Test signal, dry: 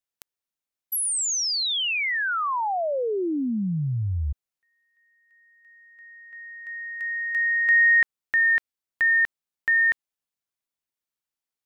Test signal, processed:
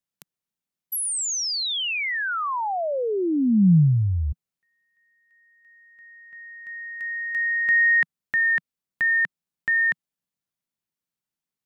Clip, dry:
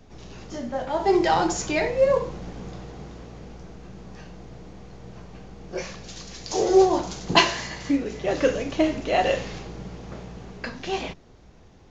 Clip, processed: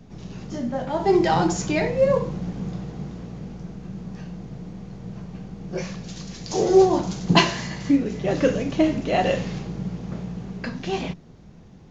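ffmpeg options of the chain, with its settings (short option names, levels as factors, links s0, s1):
-af "equalizer=f=170:t=o:w=1.2:g=12.5,volume=0.891"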